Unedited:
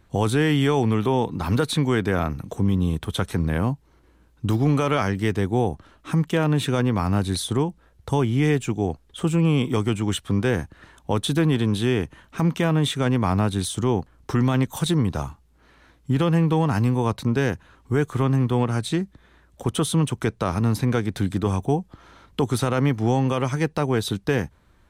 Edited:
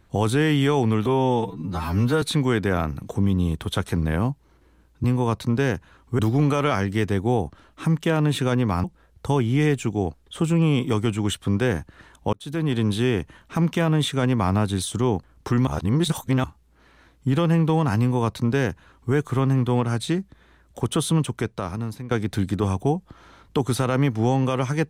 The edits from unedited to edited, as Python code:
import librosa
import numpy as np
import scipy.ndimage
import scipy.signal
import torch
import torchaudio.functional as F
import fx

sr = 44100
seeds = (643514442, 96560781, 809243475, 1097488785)

y = fx.edit(x, sr, fx.stretch_span(start_s=1.06, length_s=0.58, factor=2.0),
    fx.cut(start_s=7.11, length_s=0.56),
    fx.fade_in_span(start_s=11.16, length_s=0.49),
    fx.reverse_span(start_s=14.5, length_s=0.77),
    fx.duplicate(start_s=16.82, length_s=1.15, to_s=4.46),
    fx.fade_out_to(start_s=19.99, length_s=0.95, floor_db=-16.0), tone=tone)